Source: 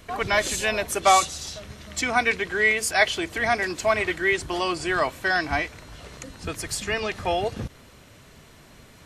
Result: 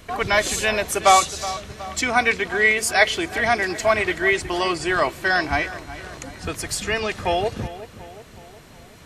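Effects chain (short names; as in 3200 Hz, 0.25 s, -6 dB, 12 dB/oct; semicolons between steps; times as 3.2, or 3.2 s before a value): darkening echo 0.369 s, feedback 55%, low-pass 3100 Hz, level -14.5 dB; gain +3 dB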